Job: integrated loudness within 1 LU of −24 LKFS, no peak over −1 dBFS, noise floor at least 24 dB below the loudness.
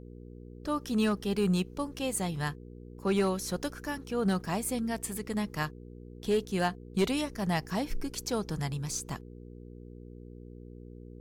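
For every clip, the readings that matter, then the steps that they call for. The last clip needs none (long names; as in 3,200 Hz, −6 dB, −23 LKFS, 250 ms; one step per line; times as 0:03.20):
share of clipped samples 0.3%; peaks flattened at −20.0 dBFS; mains hum 60 Hz; hum harmonics up to 480 Hz; level of the hum −44 dBFS; integrated loudness −32.0 LKFS; sample peak −20.0 dBFS; target loudness −24.0 LKFS
→ clipped peaks rebuilt −20 dBFS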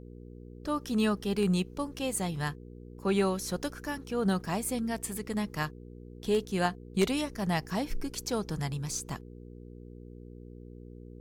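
share of clipped samples 0.0%; mains hum 60 Hz; hum harmonics up to 480 Hz; level of the hum −44 dBFS
→ hum removal 60 Hz, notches 8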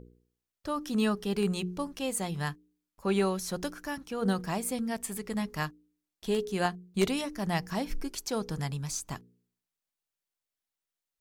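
mains hum none found; integrated loudness −32.5 LKFS; sample peak −10.5 dBFS; target loudness −24.0 LKFS
→ level +8.5 dB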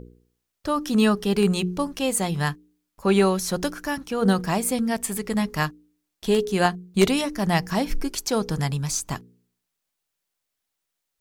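integrated loudness −24.0 LKFS; sample peak −2.0 dBFS; background noise floor −81 dBFS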